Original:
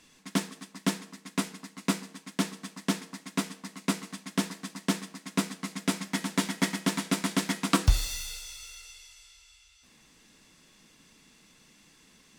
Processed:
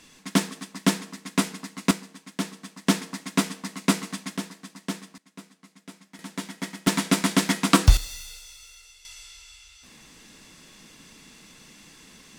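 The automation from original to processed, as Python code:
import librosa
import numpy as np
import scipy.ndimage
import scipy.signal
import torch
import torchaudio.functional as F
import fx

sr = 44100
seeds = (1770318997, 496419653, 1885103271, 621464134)

y = fx.gain(x, sr, db=fx.steps((0.0, 6.5), (1.91, -0.5), (2.87, 7.0), (4.37, -3.5), (5.18, -16.5), (6.19, -6.0), (6.87, 6.5), (7.97, -3.0), (9.05, 9.0)))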